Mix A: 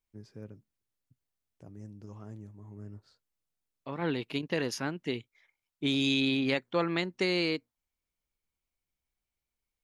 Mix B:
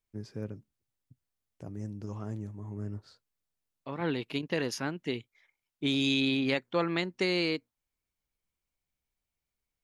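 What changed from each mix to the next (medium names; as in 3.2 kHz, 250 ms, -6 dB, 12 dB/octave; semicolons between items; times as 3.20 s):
first voice +7.5 dB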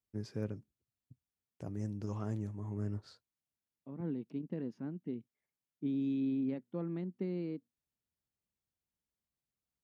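second voice: add band-pass filter 210 Hz, Q 2.3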